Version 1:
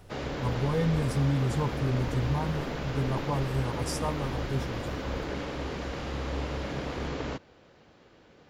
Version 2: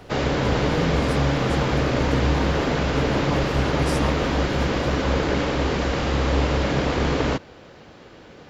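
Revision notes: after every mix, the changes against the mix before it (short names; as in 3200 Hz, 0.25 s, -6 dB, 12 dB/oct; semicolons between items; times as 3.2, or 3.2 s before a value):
background +12.0 dB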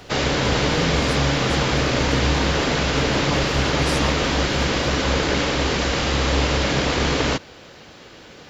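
speech: add high shelf 4600 Hz -10 dB; master: add high shelf 2200 Hz +11 dB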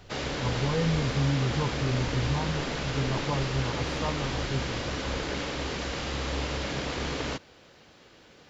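speech: add air absorption 370 m; background -11.5 dB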